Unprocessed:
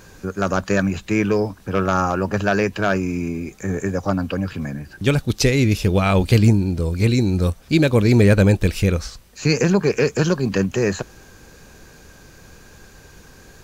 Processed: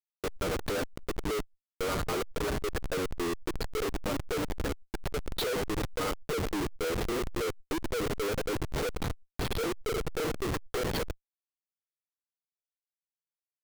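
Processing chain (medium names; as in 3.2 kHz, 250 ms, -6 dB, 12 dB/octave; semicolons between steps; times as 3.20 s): knee-point frequency compression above 1.9 kHz 1.5:1; high-pass 180 Hz 24 dB/octave; comb 6.5 ms, depth 64%; peak limiter -11 dBFS, peak gain reduction 8 dB; compression 16:1, threshold -23 dBFS, peak gain reduction 9 dB; LFO high-pass square 3.6 Hz 420–3200 Hz; static phaser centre 700 Hz, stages 6; speakerphone echo 80 ms, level -8 dB; Schmitt trigger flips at -33.5 dBFS; swell ahead of each attack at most 96 dB/s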